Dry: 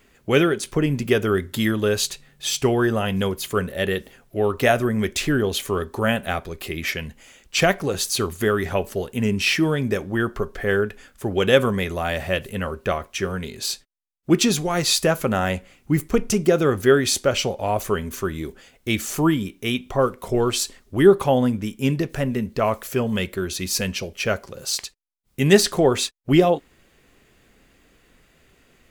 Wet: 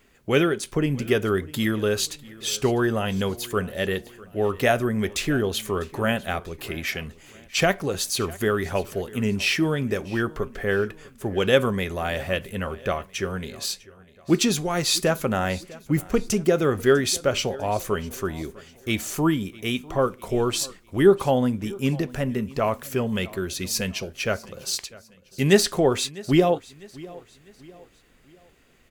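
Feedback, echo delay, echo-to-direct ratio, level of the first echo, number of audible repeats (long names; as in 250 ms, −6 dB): 42%, 650 ms, −20.0 dB, −21.0 dB, 2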